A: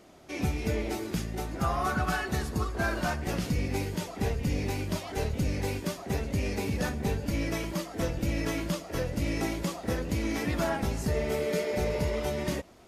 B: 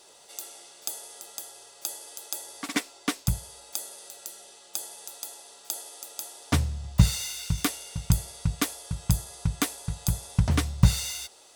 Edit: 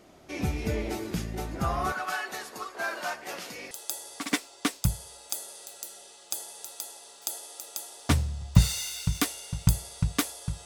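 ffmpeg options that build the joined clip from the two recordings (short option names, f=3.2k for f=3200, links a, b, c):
-filter_complex "[0:a]asettb=1/sr,asplit=3[a][b][c];[a]atrim=end=1.924[d];[b]atrim=start=1.92:end=3.71,asetpts=PTS-STARTPTS,afade=t=in:d=0.004:c=qsin,afade=t=out:st=1.786:d=0.004:c=qsin,highpass=610[e];[c]atrim=start=3.706[f];[d][e]acrossfade=d=0.004:c1=hsin:c2=qsin[g];[g][f]acrossfade=d=0.004:c1=qsin:c2=hsin,apad=whole_dur=10.65,atrim=end=10.65,atrim=end=3.712[h];[1:a]atrim=start=2.138:end=9.08[i];[h][i]acrossfade=d=0.004:c1=hsin:c2=hsin"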